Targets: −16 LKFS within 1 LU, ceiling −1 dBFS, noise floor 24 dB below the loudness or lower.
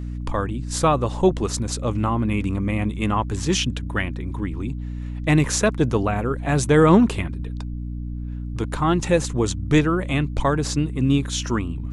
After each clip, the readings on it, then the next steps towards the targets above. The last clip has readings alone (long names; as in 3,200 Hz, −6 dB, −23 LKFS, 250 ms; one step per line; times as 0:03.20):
mains hum 60 Hz; hum harmonics up to 300 Hz; level of the hum −27 dBFS; integrated loudness −22.0 LKFS; sample peak −1.5 dBFS; target loudness −16.0 LKFS
→ hum removal 60 Hz, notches 5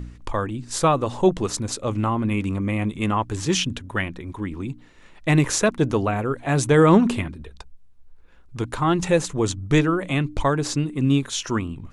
mains hum none found; integrated loudness −22.5 LKFS; sample peak −2.5 dBFS; target loudness −16.0 LKFS
→ level +6.5 dB
brickwall limiter −1 dBFS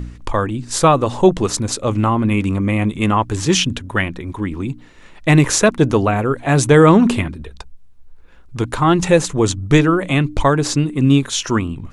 integrated loudness −16.5 LKFS; sample peak −1.0 dBFS; background noise floor −41 dBFS